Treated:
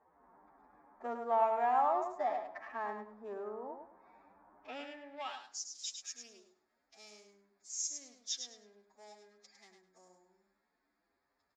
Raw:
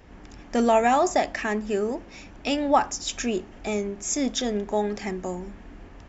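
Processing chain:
adaptive Wiener filter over 15 samples
in parallel at −6 dB: soft clipping −20.5 dBFS, distortion −11 dB
on the sum: phase-vocoder stretch with locked phases 1.9×
repeating echo 104 ms, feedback 19%, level −6.5 dB
band-pass filter sweep 970 Hz → 5,400 Hz, 0:04.59–0:05.61
level −8 dB

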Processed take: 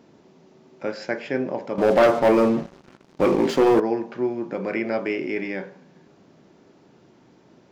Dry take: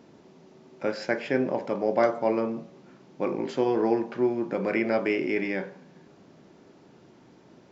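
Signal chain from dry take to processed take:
0:01.78–0:03.80: leveller curve on the samples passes 3

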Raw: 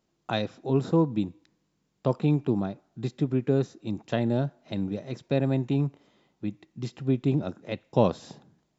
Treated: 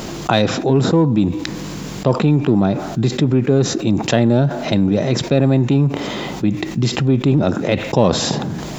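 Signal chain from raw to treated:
in parallel at −11 dB: hard clipping −26 dBFS, distortion −6 dB
on the sum: envelope flattener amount 70%
level +5.5 dB

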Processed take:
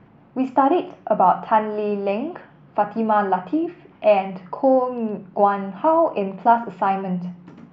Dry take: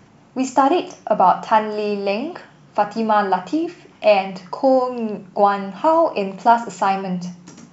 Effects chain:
high-frequency loss of the air 460 metres

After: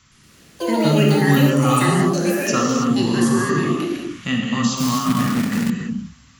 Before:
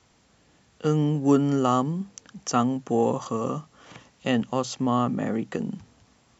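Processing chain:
flat-topped bell 530 Hz −15 dB
in parallel at +2 dB: brickwall limiter −24 dBFS, peak gain reduction 10.5 dB
on the sum: reverb whose tail is shaped and stops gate 350 ms flat, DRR −2 dB
delay with pitch and tempo change per echo 117 ms, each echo +7 semitones, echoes 3
0:04.77–0:05.70: log-companded quantiser 4 bits

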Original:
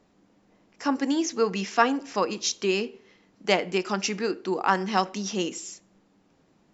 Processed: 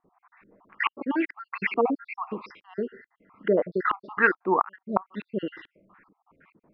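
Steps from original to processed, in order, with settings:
time-frequency cells dropped at random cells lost 58%
auto-filter low-pass saw up 2.3 Hz 320–2,700 Hz
flat-topped bell 1,600 Hz +13.5 dB
gate with flip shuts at −6 dBFS, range −33 dB
downsampling to 11,025 Hz

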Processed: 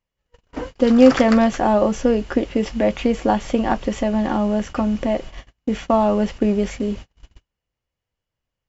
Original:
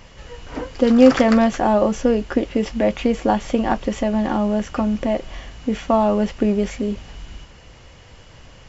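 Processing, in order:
noise gate −31 dBFS, range −39 dB

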